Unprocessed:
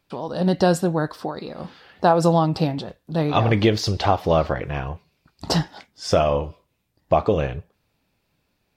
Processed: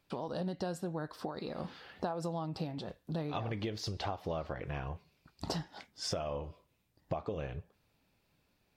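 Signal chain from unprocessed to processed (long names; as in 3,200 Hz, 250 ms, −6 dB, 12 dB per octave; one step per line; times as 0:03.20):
downward compressor 6 to 1, threshold −31 dBFS, peak gain reduction 18 dB
level −4 dB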